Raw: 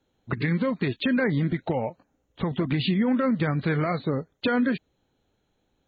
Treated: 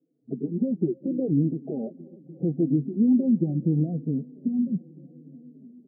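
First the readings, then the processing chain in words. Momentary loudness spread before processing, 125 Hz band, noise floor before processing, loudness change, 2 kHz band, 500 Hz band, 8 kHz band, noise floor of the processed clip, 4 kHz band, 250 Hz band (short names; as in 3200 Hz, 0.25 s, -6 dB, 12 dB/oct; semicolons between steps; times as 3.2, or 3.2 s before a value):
7 LU, -0.5 dB, -73 dBFS, 0.0 dB, under -40 dB, -4.0 dB, n/a, -57 dBFS, under -40 dB, +2.0 dB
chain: low-pass sweep 340 Hz -> 170 Hz, 3.2–4.87; dark delay 0.296 s, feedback 82%, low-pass 640 Hz, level -23.5 dB; FFT band-pass 130–810 Hz; endless flanger 3.9 ms -0.77 Hz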